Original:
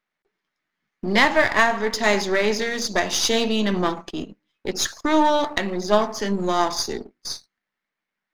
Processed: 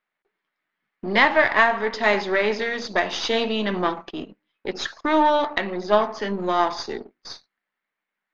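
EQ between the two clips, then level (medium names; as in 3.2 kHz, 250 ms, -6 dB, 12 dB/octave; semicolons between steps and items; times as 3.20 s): Bessel low-pass 3 kHz, order 4; bass shelf 270 Hz -10 dB; +2.0 dB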